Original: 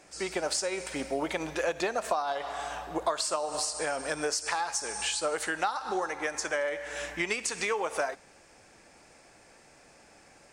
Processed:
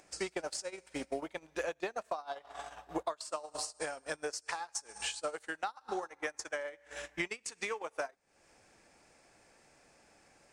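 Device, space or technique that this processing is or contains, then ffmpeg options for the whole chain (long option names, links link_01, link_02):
upward and downward compression: -af "acompressor=mode=upward:threshold=-35dB:ratio=2.5,acompressor=threshold=-42dB:ratio=6,agate=range=-27dB:threshold=-42dB:ratio=16:detection=peak,volume=10dB"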